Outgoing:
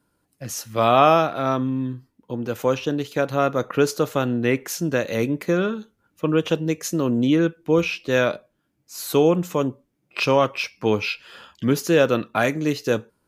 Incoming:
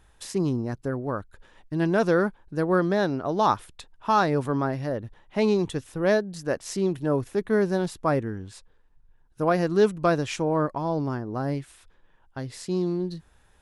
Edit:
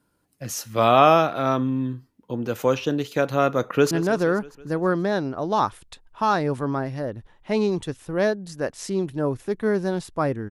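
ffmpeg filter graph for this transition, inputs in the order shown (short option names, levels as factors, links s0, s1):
-filter_complex "[0:a]apad=whole_dur=10.5,atrim=end=10.5,atrim=end=3.912[s0];[1:a]atrim=start=1.778:end=8.37[s1];[s0][s1]acrossfade=d=0.004:c1=hsin:c2=hsin,asplit=2[s2][s3];[s3]afade=t=in:st=3.64:d=0.01,afade=t=out:st=3.91:d=0.01,aecho=0:1:160|320|480|640|800|960|1120:0.199526|0.129692|0.0842998|0.0547949|0.0356167|0.0231508|0.015048[s4];[s2][s4]amix=inputs=2:normalize=0"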